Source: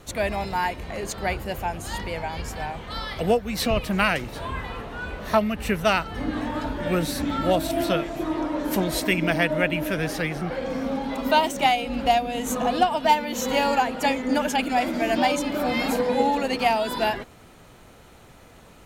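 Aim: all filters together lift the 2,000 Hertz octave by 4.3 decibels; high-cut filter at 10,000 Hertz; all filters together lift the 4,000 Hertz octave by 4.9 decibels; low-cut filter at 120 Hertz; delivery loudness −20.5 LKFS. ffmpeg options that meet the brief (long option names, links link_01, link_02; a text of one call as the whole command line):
ffmpeg -i in.wav -af "highpass=120,lowpass=10000,equalizer=frequency=2000:width_type=o:gain=4,equalizer=frequency=4000:width_type=o:gain=5,volume=2.5dB" out.wav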